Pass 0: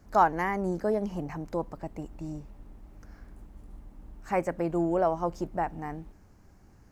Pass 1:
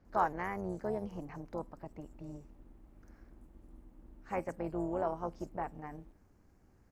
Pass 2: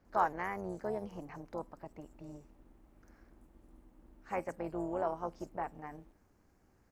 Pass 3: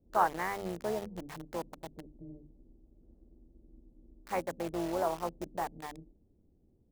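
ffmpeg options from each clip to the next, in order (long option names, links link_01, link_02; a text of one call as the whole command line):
ffmpeg -i in.wav -filter_complex "[0:a]acrossover=split=5200[link_01][link_02];[link_02]adelay=50[link_03];[link_01][link_03]amix=inputs=2:normalize=0,tremolo=f=290:d=0.621,volume=-6dB" out.wav
ffmpeg -i in.wav -af "lowshelf=frequency=290:gain=-6.5,volume=1dB" out.wav
ffmpeg -i in.wav -filter_complex "[0:a]bandreject=frequency=50:width_type=h:width=6,bandreject=frequency=100:width_type=h:width=6,bandreject=frequency=150:width_type=h:width=6,bandreject=frequency=200:width_type=h:width=6,bandreject=frequency=250:width_type=h:width=6,bandreject=frequency=300:width_type=h:width=6,acrossover=split=500[link_01][link_02];[link_02]acrusher=bits=7:mix=0:aa=0.000001[link_03];[link_01][link_03]amix=inputs=2:normalize=0,volume=3dB" out.wav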